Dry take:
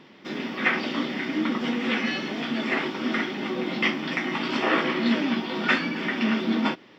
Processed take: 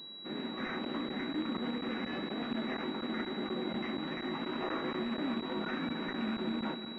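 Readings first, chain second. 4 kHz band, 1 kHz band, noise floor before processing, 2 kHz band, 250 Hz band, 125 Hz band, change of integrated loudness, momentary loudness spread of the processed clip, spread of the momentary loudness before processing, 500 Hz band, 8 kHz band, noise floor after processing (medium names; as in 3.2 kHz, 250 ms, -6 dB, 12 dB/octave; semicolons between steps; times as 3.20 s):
-9.5 dB, -10.0 dB, -51 dBFS, -15.5 dB, -9.5 dB, -8.0 dB, -11.0 dB, 2 LU, 5 LU, -8.5 dB, no reading, -43 dBFS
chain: rattle on loud lows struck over -26 dBFS, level -16 dBFS; peak limiter -19.5 dBFS, peak gain reduction 11.5 dB; on a send: multi-head delay 182 ms, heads all three, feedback 54%, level -15 dB; on the sum: crackling interface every 0.24 s, samples 512, zero, from 0.85 s; class-D stage that switches slowly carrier 3.9 kHz; trim -7 dB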